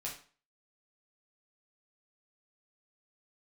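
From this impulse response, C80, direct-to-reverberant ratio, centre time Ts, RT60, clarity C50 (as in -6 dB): 12.5 dB, -4.5 dB, 26 ms, 0.40 s, 7.0 dB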